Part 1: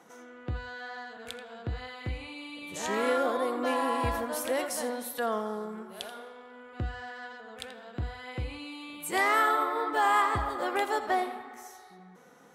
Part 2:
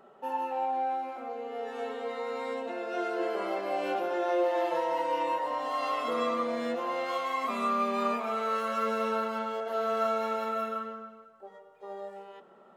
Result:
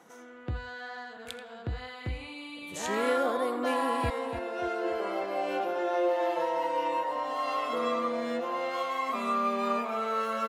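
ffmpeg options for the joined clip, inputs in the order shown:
ffmpeg -i cue0.wav -i cue1.wav -filter_complex "[0:a]apad=whole_dur=10.48,atrim=end=10.48,atrim=end=4.102[link_01];[1:a]atrim=start=2.448:end=8.83[link_02];[link_01][link_02]acrossfade=duration=0.004:curve1=hsin:curve2=hsin,asplit=2[link_03][link_04];[link_04]afade=type=in:start_time=3.72:duration=0.01,afade=type=out:start_time=4.1:duration=0.01,aecho=0:1:290|580|870|1160:0.281838|0.0986434|0.0345252|0.0120838[link_05];[link_03][link_05]amix=inputs=2:normalize=0" out.wav

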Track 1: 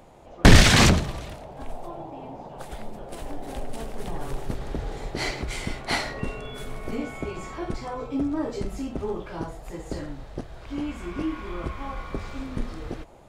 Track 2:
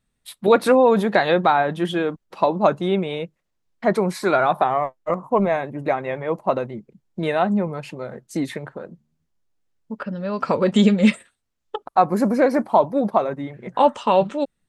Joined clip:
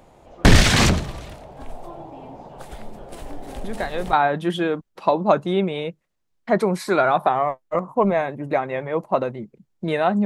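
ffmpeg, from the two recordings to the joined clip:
ffmpeg -i cue0.wav -i cue1.wav -filter_complex "[1:a]asplit=2[link_01][link_02];[0:a]apad=whole_dur=10.25,atrim=end=10.25,atrim=end=4.132[link_03];[link_02]atrim=start=1.478:end=7.6[link_04];[link_01]atrim=start=0.99:end=1.48,asetpts=PTS-STARTPTS,volume=-10dB,afade=type=in:duration=0.004:curve=hsin,afade=type=out:start_time=0.486:duration=0.004:curve=hsin,adelay=3640[link_05];[link_03][link_04]acrossfade=duration=0.004:curve1=hsin:curve2=hsin[link_06];[link_06][link_05]amix=inputs=2:normalize=0" out.wav

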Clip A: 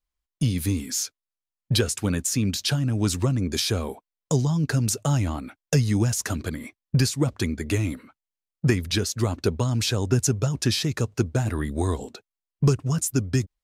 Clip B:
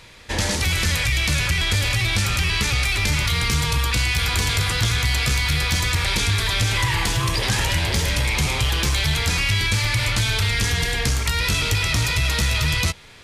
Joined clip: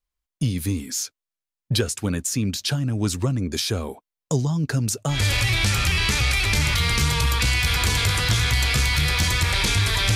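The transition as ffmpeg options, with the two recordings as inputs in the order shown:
ffmpeg -i cue0.wav -i cue1.wav -filter_complex "[0:a]apad=whole_dur=10.15,atrim=end=10.15,atrim=end=5.25,asetpts=PTS-STARTPTS[link_01];[1:a]atrim=start=1.59:end=6.67,asetpts=PTS-STARTPTS[link_02];[link_01][link_02]acrossfade=duration=0.18:curve1=tri:curve2=tri" out.wav

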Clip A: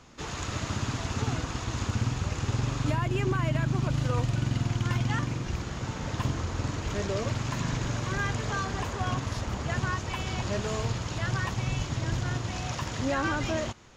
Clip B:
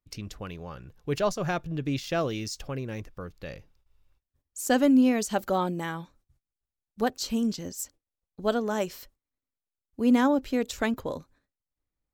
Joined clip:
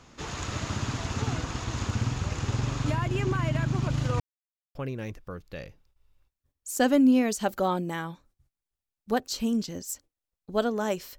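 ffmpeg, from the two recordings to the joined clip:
ffmpeg -i cue0.wav -i cue1.wav -filter_complex "[0:a]apad=whole_dur=11.18,atrim=end=11.18,asplit=2[link_01][link_02];[link_01]atrim=end=4.2,asetpts=PTS-STARTPTS,afade=type=out:start_time=4.196:duration=0.004:curve=hsin[link_03];[link_02]atrim=start=4.2:end=4.75,asetpts=PTS-STARTPTS,volume=0[link_04];[1:a]atrim=start=2.65:end=9.08,asetpts=PTS-STARTPTS,afade=type=in:duration=0.004:curve=hsin[link_05];[link_03][link_04][link_05]concat=n=3:v=0:a=1" out.wav

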